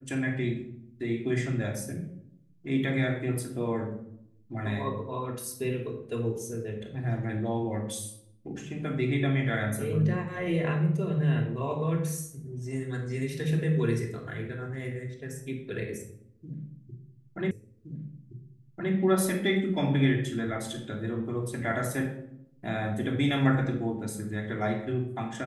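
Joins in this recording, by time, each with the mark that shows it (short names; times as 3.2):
17.51 repeat of the last 1.42 s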